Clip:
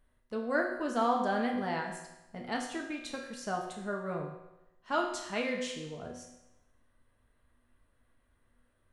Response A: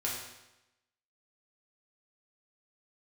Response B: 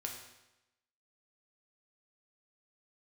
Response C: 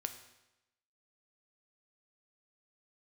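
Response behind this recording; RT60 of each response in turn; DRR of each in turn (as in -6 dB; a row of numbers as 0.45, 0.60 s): B; 0.95, 0.95, 0.95 s; -5.5, 0.5, 7.0 dB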